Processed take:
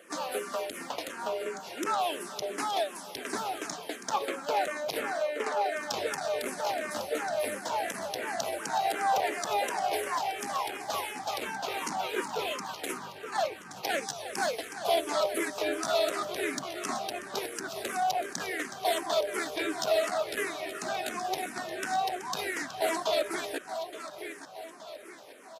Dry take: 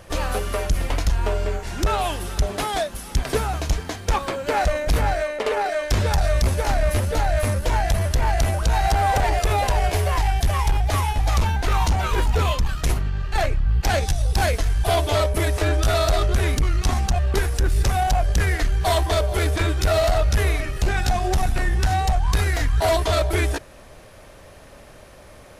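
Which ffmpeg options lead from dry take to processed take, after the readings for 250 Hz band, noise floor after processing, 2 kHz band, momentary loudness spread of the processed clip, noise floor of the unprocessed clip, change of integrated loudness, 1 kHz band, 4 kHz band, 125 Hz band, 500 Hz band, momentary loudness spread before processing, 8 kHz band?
-8.5 dB, -46 dBFS, -7.0 dB, 8 LU, -45 dBFS, -10.0 dB, -6.5 dB, -6.5 dB, -34.0 dB, -6.5 dB, 5 LU, -6.5 dB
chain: -filter_complex "[0:a]highpass=f=240:w=0.5412,highpass=f=240:w=1.3066,asplit=2[a][b];[b]aecho=0:1:872|1744|2616|3488|4360:0.282|0.135|0.0649|0.0312|0.015[c];[a][c]amix=inputs=2:normalize=0,asplit=2[d][e];[e]afreqshift=-2.8[f];[d][f]amix=inputs=2:normalize=1,volume=-4dB"

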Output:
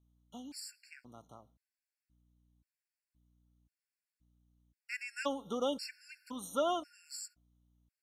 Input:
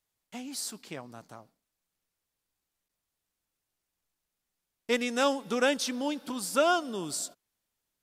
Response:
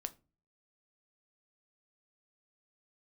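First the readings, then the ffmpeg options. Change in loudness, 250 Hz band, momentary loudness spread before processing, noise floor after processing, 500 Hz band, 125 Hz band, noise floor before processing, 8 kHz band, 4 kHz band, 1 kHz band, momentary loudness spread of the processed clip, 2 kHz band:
-9.0 dB, -10.0 dB, 17 LU, under -85 dBFS, -8.5 dB, -11.0 dB, under -85 dBFS, -11.5 dB, -10.0 dB, -8.5 dB, 21 LU, -11.5 dB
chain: -filter_complex "[0:a]aeval=exprs='val(0)+0.000708*(sin(2*PI*60*n/s)+sin(2*PI*2*60*n/s)/2+sin(2*PI*3*60*n/s)/3+sin(2*PI*4*60*n/s)/4+sin(2*PI*5*60*n/s)/5)':c=same,asplit=2[a][b];[1:a]atrim=start_sample=2205,lowpass=7.5k[c];[b][c]afir=irnorm=-1:irlink=0,volume=-10.5dB[d];[a][d]amix=inputs=2:normalize=0,afftfilt=real='re*gt(sin(2*PI*0.95*pts/sr)*(1-2*mod(floor(b*sr/1024/1400),2)),0)':imag='im*gt(sin(2*PI*0.95*pts/sr)*(1-2*mod(floor(b*sr/1024/1400),2)),0)':win_size=1024:overlap=0.75,volume=-8.5dB"

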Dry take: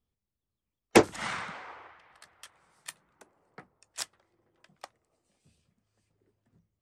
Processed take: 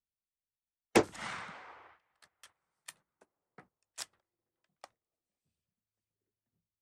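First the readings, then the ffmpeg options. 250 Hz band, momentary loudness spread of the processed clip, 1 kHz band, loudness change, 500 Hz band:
-6.5 dB, 23 LU, -6.5 dB, -6.5 dB, -6.5 dB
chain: -af "agate=range=-13dB:threshold=-54dB:ratio=16:detection=peak,volume=-6.5dB"

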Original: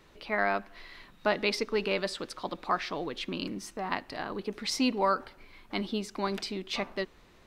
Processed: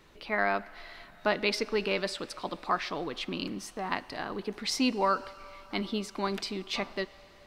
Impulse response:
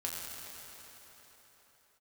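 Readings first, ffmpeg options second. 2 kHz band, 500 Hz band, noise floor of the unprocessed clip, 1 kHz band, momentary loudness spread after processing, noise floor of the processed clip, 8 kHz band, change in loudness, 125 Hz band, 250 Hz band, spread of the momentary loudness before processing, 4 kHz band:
+0.5 dB, -0.5 dB, -58 dBFS, 0.0 dB, 9 LU, -54 dBFS, +0.5 dB, 0.0 dB, 0.0 dB, 0.0 dB, 9 LU, +0.5 dB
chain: -filter_complex "[0:a]asplit=2[a][b];[b]highpass=f=520:w=0.5412,highpass=f=520:w=1.3066[c];[1:a]atrim=start_sample=2205[d];[c][d]afir=irnorm=-1:irlink=0,volume=-19dB[e];[a][e]amix=inputs=2:normalize=0"

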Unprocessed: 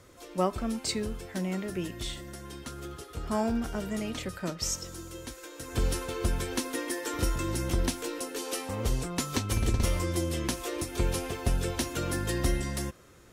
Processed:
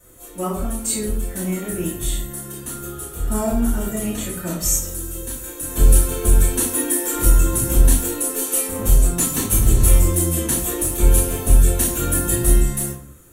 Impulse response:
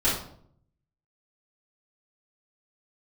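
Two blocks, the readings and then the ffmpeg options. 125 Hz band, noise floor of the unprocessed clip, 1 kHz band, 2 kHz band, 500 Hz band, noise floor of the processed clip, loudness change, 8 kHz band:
+11.5 dB, -49 dBFS, +5.0 dB, +4.5 dB, +7.0 dB, -38 dBFS, +13.0 dB, +16.5 dB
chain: -filter_complex "[0:a]bandreject=f=5.1k:w=9.4,dynaudnorm=f=220:g=9:m=3.5dB,aexciter=amount=10.1:drive=2.9:freq=7.2k[a];[1:a]atrim=start_sample=2205,afade=t=out:st=0.33:d=0.01,atrim=end_sample=14994[b];[a][b]afir=irnorm=-1:irlink=0,volume=-11dB"

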